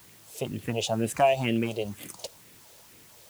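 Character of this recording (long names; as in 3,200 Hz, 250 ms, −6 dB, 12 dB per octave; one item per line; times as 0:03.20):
phaser sweep stages 4, 2.1 Hz, lowest notch 230–1,000 Hz
a quantiser's noise floor 10 bits, dither triangular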